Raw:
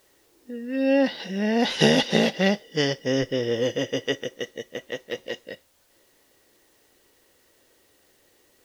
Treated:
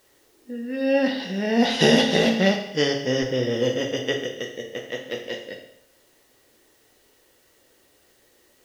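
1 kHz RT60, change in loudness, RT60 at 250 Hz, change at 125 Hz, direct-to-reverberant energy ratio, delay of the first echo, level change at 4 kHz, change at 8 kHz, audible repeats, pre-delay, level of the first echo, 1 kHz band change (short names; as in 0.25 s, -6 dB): 0.75 s, +1.5 dB, 0.75 s, +1.0 dB, 2.5 dB, none, +2.0 dB, +1.5 dB, none, 15 ms, none, +2.0 dB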